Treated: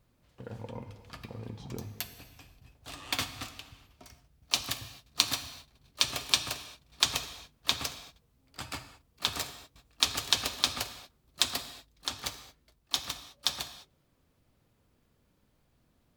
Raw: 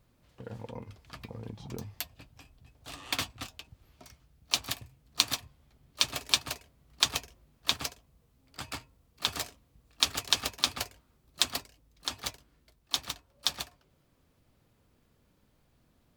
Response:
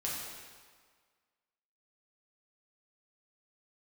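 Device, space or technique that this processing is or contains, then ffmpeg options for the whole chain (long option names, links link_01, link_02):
keyed gated reverb: -filter_complex "[0:a]asplit=3[link_01][link_02][link_03];[1:a]atrim=start_sample=2205[link_04];[link_02][link_04]afir=irnorm=-1:irlink=0[link_05];[link_03]apad=whole_len=712736[link_06];[link_05][link_06]sidechaingate=range=-33dB:threshold=-59dB:ratio=16:detection=peak,volume=-9.5dB[link_07];[link_01][link_07]amix=inputs=2:normalize=0,volume=-2dB"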